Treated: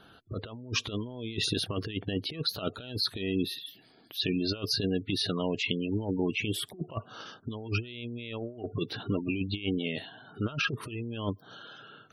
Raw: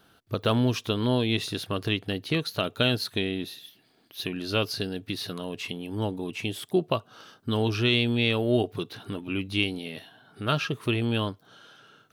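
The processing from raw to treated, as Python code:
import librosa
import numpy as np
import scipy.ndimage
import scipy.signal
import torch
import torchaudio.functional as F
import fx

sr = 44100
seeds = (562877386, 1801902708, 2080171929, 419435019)

y = fx.spec_gate(x, sr, threshold_db=-20, keep='strong')
y = fx.over_compress(y, sr, threshold_db=-31.0, ratio=-0.5)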